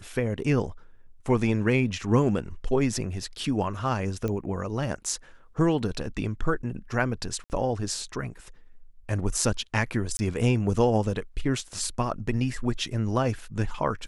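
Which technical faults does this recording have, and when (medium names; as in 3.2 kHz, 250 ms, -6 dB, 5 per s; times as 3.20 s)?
4.28 s: pop -18 dBFS
7.44–7.50 s: dropout 59 ms
10.17–10.19 s: dropout 20 ms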